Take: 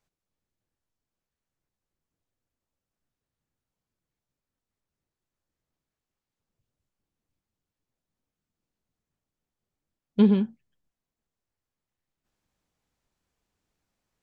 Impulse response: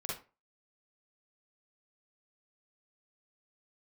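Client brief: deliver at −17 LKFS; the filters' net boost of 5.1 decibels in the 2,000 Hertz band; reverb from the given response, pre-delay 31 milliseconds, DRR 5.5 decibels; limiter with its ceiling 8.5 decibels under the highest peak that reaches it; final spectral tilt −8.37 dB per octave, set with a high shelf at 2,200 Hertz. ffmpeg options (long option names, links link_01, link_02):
-filter_complex "[0:a]equalizer=frequency=2000:width_type=o:gain=8.5,highshelf=frequency=2200:gain=-3,alimiter=limit=-17.5dB:level=0:latency=1,asplit=2[link_01][link_02];[1:a]atrim=start_sample=2205,adelay=31[link_03];[link_02][link_03]afir=irnorm=-1:irlink=0,volume=-7dB[link_04];[link_01][link_04]amix=inputs=2:normalize=0,volume=10dB"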